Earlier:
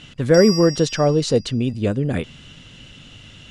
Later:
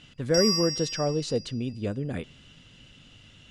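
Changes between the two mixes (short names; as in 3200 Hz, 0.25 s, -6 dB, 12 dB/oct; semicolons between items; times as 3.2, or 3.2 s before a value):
speech -10.5 dB; reverb: on, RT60 0.85 s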